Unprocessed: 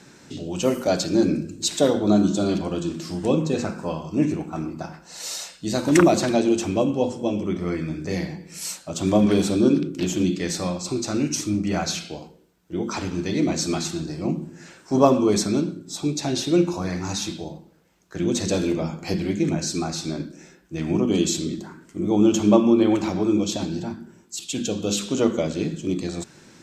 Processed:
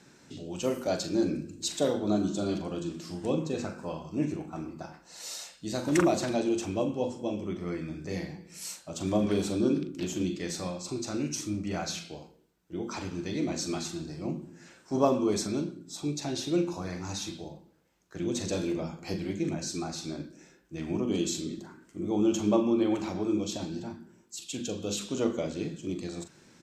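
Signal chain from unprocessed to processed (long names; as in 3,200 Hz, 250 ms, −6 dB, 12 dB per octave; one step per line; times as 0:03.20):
double-tracking delay 41 ms −10.5 dB
level −8.5 dB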